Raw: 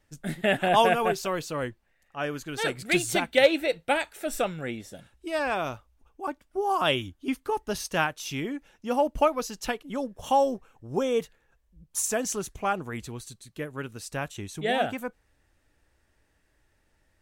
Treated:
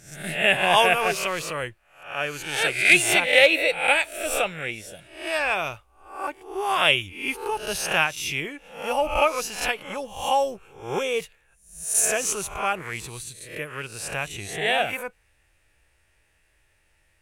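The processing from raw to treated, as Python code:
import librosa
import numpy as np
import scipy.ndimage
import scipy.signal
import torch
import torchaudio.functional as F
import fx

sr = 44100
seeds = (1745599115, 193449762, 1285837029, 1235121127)

y = fx.spec_swells(x, sr, rise_s=0.52)
y = fx.graphic_eq_15(y, sr, hz=(250, 2500, 10000), db=(-10, 10, 8))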